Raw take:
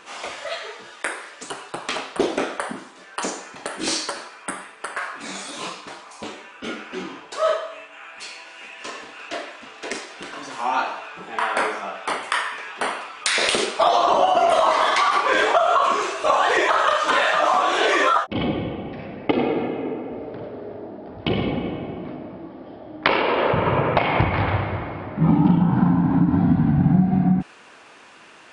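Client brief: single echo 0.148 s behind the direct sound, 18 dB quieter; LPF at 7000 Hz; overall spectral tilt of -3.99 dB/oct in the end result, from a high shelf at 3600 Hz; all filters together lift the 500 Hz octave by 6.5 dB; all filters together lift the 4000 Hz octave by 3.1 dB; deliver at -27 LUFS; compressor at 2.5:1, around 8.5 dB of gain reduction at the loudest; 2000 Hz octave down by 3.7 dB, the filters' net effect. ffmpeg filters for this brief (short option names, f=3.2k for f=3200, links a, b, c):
-af "lowpass=7k,equalizer=f=500:t=o:g=9,equalizer=f=2k:t=o:g=-6.5,highshelf=f=3.6k:g=-4,equalizer=f=4k:t=o:g=9,acompressor=threshold=-23dB:ratio=2.5,aecho=1:1:148:0.126,volume=-1dB"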